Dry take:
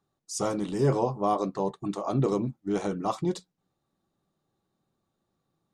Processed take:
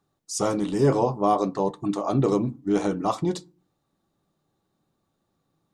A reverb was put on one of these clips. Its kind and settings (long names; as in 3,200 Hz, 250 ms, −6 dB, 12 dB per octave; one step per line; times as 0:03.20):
feedback delay network reverb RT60 0.37 s, low-frequency decay 1.5×, high-frequency decay 0.55×, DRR 16.5 dB
level +4 dB